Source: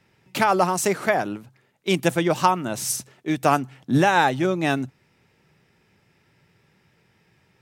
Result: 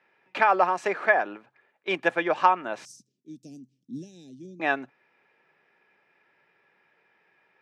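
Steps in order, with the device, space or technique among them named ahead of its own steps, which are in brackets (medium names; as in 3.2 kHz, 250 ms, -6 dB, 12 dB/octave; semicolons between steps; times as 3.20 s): tin-can telephone (band-pass 510–2200 Hz; small resonant body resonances 1.7/2.4 kHz, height 9 dB); 2.85–4.60 s: Chebyshev band-stop 240–5700 Hz, order 3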